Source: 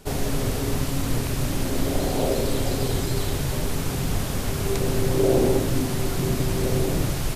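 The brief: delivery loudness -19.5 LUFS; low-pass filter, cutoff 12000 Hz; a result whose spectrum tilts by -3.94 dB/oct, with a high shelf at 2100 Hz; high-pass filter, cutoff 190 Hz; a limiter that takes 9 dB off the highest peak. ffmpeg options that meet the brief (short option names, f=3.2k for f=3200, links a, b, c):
-af "highpass=190,lowpass=12k,highshelf=f=2.1k:g=4,volume=7.5dB,alimiter=limit=-9.5dB:level=0:latency=1"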